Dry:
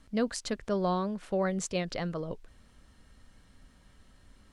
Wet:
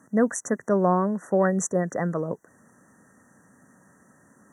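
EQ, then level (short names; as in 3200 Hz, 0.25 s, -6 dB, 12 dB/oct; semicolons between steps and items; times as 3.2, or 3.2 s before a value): HPF 140 Hz 24 dB/oct; brick-wall FIR band-stop 2000–5700 Hz; +8.0 dB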